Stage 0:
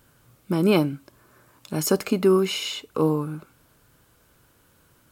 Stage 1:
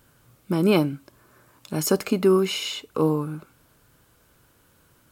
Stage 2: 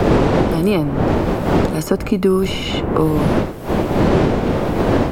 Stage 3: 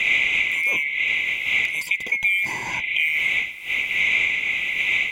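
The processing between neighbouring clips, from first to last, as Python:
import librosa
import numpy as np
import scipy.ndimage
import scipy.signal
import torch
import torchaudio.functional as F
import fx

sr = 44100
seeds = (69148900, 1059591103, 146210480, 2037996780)

y1 = x
y2 = fx.dmg_wind(y1, sr, seeds[0], corner_hz=440.0, level_db=-20.0)
y2 = fx.band_squash(y2, sr, depth_pct=100)
y2 = y2 * 10.0 ** (2.5 / 20.0)
y3 = fx.band_swap(y2, sr, width_hz=2000)
y3 = y3 * 10.0 ** (-6.5 / 20.0)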